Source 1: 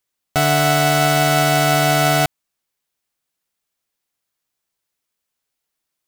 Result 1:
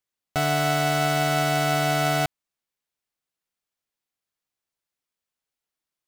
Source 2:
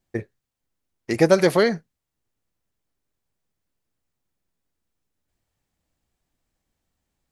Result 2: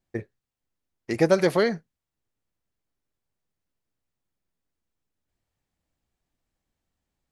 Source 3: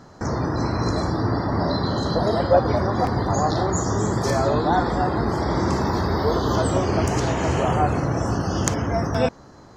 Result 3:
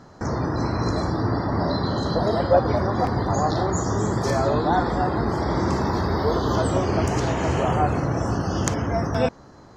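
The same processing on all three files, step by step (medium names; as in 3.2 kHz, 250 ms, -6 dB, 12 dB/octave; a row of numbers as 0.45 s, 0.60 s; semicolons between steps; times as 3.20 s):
treble shelf 6.6 kHz -4.5 dB; normalise loudness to -23 LUFS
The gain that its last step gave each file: -7.0 dB, -3.5 dB, -1.0 dB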